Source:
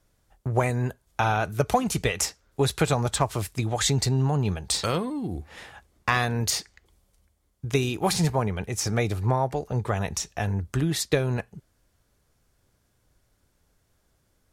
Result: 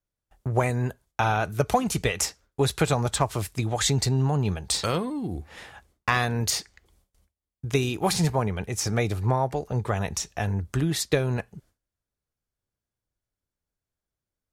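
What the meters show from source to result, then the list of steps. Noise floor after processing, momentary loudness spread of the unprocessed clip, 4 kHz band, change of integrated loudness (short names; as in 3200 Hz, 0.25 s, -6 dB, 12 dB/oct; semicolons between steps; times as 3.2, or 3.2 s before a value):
under -85 dBFS, 7 LU, 0.0 dB, 0.0 dB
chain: gate with hold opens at -53 dBFS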